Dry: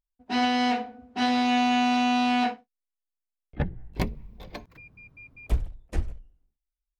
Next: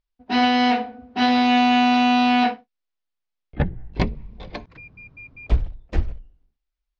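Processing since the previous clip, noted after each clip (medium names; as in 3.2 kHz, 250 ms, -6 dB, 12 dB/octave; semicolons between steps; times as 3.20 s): low-pass 5.1 kHz 24 dB/octave; trim +6 dB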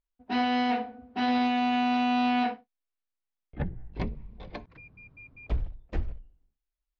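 treble shelf 5.2 kHz -10.5 dB; peak limiter -13 dBFS, peak gain reduction 6 dB; trim -6 dB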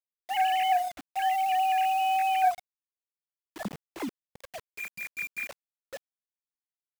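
formants replaced by sine waves; bit crusher 7-bit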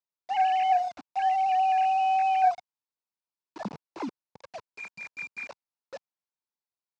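cabinet simulation 100–5700 Hz, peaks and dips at 930 Hz +7 dB, 1.9 kHz -7 dB, 3.2 kHz -8 dB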